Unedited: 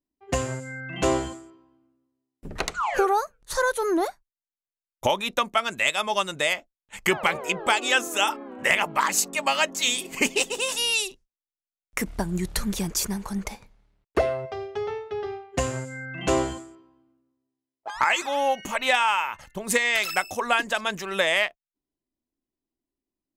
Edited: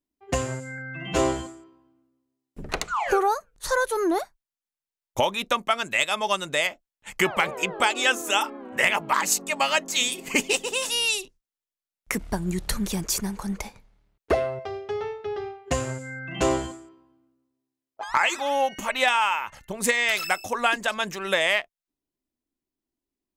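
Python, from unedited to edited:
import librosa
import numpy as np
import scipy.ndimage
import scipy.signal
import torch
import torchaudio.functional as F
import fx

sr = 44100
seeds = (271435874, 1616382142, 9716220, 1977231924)

y = fx.edit(x, sr, fx.stretch_span(start_s=0.78, length_s=0.27, factor=1.5), tone=tone)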